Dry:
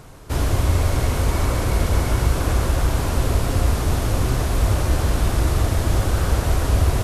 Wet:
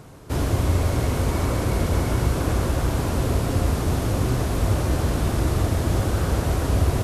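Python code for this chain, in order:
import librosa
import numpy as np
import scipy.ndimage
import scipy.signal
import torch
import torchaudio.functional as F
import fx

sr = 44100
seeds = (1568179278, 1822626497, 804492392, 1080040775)

y = fx.highpass(x, sr, hz=230.0, slope=6)
y = fx.low_shelf(y, sr, hz=370.0, db=11.5)
y = F.gain(torch.from_numpy(y), -3.5).numpy()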